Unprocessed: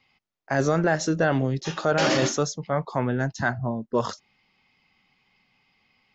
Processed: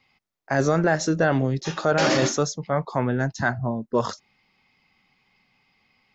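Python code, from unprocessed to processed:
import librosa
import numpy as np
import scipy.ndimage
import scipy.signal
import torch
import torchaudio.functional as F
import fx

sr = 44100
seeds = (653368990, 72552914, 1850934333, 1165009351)

y = fx.peak_eq(x, sr, hz=3000.0, db=-3.5, octaves=0.29)
y = F.gain(torch.from_numpy(y), 1.5).numpy()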